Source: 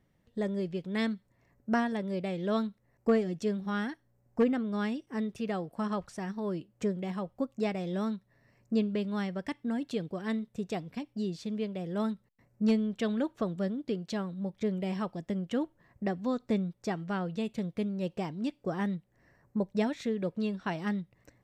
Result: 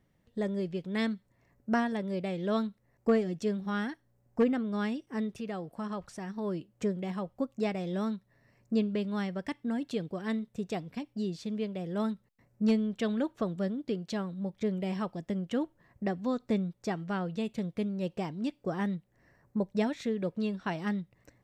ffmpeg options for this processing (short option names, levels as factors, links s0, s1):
-filter_complex "[0:a]asettb=1/sr,asplit=3[s0][s1][s2];[s0]atrim=end=5.344[s3];[s1]atrim=start=5.34:end=6.38,asetpts=PTS-STARTPTS,afade=t=in:d=0.004:c=qsin,afade=t=out:st=1.036:d=0.004:c=qsin,acompressor=threshold=0.0112:ratio=1.5:attack=3.2:release=140:knee=1:detection=peak[s4];[s2]atrim=start=6.376[s5];[s3][s4]acrossfade=d=0.004:c1=hsin:c2=qsin[s6];[s6][s5]acrossfade=d=0.004:c1=qsin:c2=hsin"